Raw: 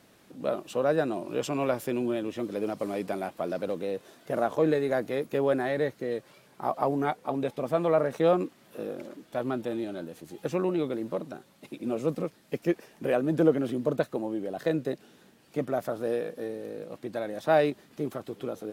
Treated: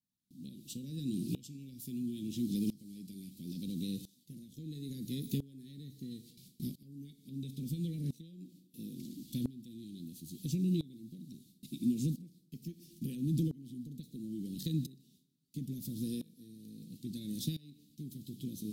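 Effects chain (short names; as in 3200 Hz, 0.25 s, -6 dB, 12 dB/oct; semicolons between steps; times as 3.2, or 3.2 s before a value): high shelf 4700 Hz -5 dB; gate with hold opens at -45 dBFS; reverb, pre-delay 3 ms, DRR 12 dB; compressor 6:1, threshold -29 dBFS, peak gain reduction 12.5 dB; elliptic band-stop 230–3900 Hz, stop band 60 dB; high shelf 10000 Hz +11 dB; dB-ramp tremolo swelling 0.74 Hz, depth 21 dB; gain +11 dB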